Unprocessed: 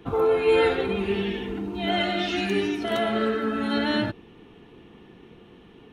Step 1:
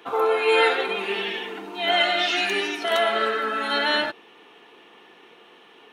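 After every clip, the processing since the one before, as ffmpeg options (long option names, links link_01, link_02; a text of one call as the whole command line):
ffmpeg -i in.wav -af "highpass=680,volume=7dB" out.wav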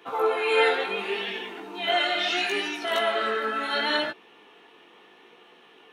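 ffmpeg -i in.wav -af "flanger=delay=16:depth=6.7:speed=0.73" out.wav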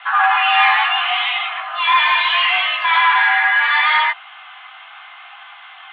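ffmpeg -i in.wav -filter_complex "[0:a]asplit=2[link_01][link_02];[link_02]highpass=frequency=720:poles=1,volume=20dB,asoftclip=type=tanh:threshold=-8.5dB[link_03];[link_01][link_03]amix=inputs=2:normalize=0,lowpass=frequency=2300:poles=1,volume=-6dB,highpass=frequency=450:width_type=q:width=0.5412,highpass=frequency=450:width_type=q:width=1.307,lowpass=frequency=3000:width_type=q:width=0.5176,lowpass=frequency=3000:width_type=q:width=0.7071,lowpass=frequency=3000:width_type=q:width=1.932,afreqshift=330,volume=5dB" out.wav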